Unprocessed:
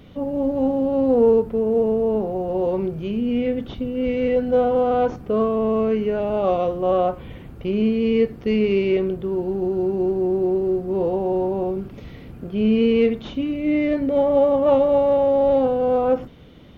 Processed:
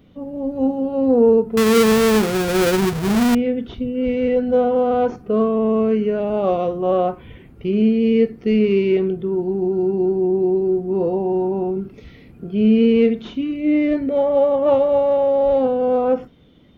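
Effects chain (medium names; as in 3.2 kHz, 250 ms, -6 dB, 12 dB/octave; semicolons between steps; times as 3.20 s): 1.57–3.35 s: square wave that keeps the level; peaking EQ 250 Hz +4.5 dB 1.4 oct; spectral noise reduction 8 dB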